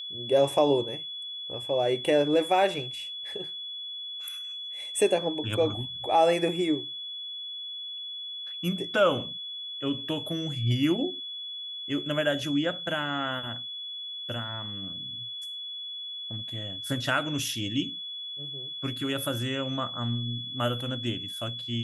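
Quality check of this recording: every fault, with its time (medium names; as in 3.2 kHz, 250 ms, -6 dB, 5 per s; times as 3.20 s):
whine 3.4 kHz -35 dBFS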